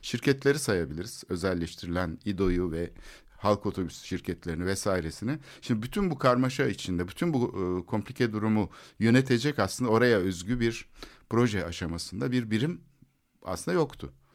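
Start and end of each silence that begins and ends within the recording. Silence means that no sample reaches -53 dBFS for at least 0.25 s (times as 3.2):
13.03–13.42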